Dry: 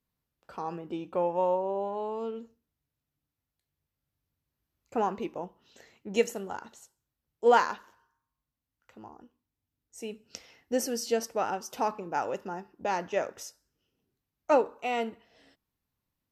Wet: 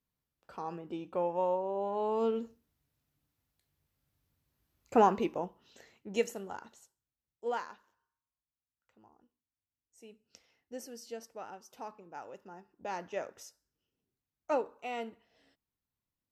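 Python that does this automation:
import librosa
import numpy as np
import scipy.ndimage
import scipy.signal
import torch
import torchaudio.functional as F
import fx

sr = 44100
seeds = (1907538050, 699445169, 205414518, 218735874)

y = fx.gain(x, sr, db=fx.line((1.71, -4.0), (2.25, 5.0), (4.99, 5.0), (6.13, -5.0), (6.63, -5.0), (7.64, -15.0), (12.33, -15.0), (12.96, -8.0)))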